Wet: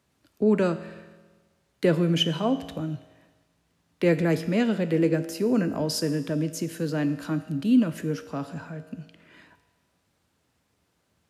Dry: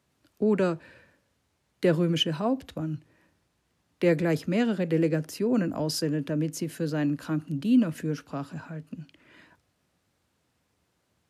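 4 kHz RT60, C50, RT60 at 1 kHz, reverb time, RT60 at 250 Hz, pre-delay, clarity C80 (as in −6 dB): 1.4 s, 13.0 dB, 1.4 s, 1.4 s, 1.4 s, 5 ms, 14.5 dB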